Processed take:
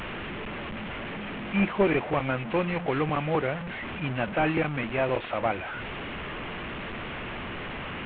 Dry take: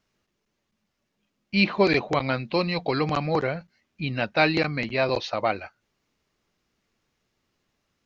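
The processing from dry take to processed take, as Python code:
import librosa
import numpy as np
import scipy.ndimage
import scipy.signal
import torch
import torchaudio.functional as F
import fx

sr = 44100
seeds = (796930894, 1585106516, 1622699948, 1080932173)

y = fx.delta_mod(x, sr, bps=16000, step_db=-27.0)
y = F.gain(torch.from_numpy(y), -2.0).numpy()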